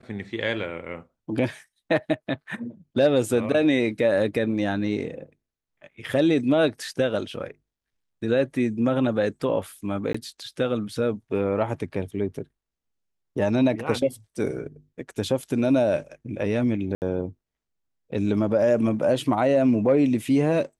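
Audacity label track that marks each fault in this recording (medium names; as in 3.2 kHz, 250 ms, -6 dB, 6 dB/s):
10.130000	10.140000	dropout 15 ms
16.950000	17.020000	dropout 69 ms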